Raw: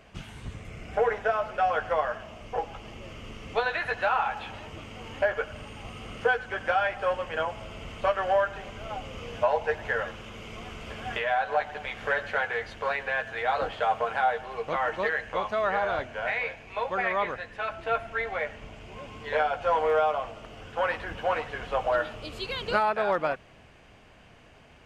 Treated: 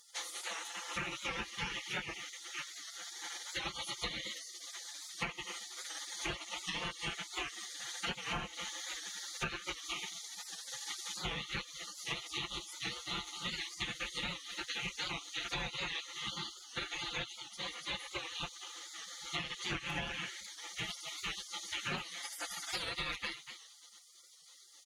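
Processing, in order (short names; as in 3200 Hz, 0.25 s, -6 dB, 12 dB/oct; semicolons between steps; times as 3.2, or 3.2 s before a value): octaver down 1 oct, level -1 dB; ripple EQ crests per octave 1.5, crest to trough 9 dB; feedback echo 0.242 s, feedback 16%, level -17 dB; spectral gate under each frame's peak -30 dB weak; HPF 43 Hz 12 dB/oct; low shelf 140 Hz +8 dB; comb 5.8 ms, depth 73%; compressor 6:1, threshold -48 dBFS, peak gain reduction 12.5 dB; record warp 78 rpm, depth 100 cents; gain +12.5 dB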